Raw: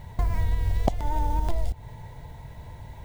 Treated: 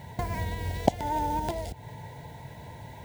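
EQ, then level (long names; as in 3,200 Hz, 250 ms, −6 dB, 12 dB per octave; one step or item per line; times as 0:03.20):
high-pass filter 130 Hz 12 dB per octave
Butterworth band-reject 1,200 Hz, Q 3.7
+3.5 dB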